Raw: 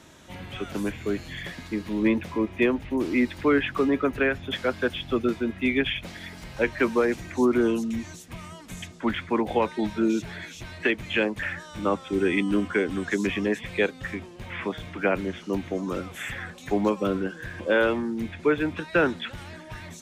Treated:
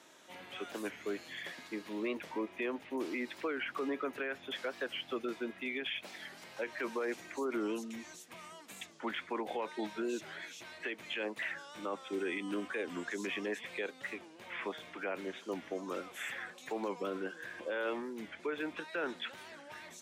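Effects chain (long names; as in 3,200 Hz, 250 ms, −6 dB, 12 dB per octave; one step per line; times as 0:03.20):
high-pass filter 370 Hz 12 dB per octave
brickwall limiter −21.5 dBFS, peak gain reduction 10 dB
wow of a warped record 45 rpm, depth 160 cents
level −6.5 dB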